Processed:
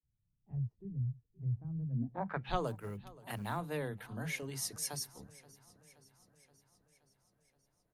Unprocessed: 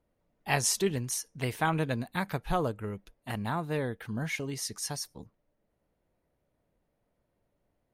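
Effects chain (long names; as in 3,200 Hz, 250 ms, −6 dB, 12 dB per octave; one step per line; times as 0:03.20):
low-pass filter sweep 120 Hz → 12,000 Hz, 0:01.89–0:02.71
0:02.67–0:03.57: floating-point word with a short mantissa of 4 bits
multiband delay without the direct sound highs, lows 30 ms, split 240 Hz
feedback echo with a swinging delay time 525 ms, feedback 62%, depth 54 cents, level −21 dB
level −5.5 dB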